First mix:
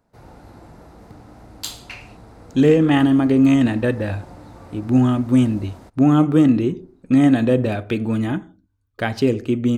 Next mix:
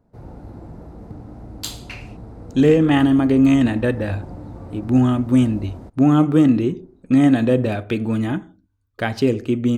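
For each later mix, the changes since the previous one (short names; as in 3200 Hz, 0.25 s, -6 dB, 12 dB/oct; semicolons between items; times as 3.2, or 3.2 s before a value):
background: add tilt shelf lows +8 dB, about 820 Hz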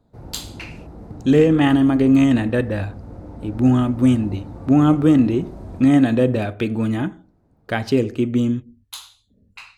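speech: entry -1.30 s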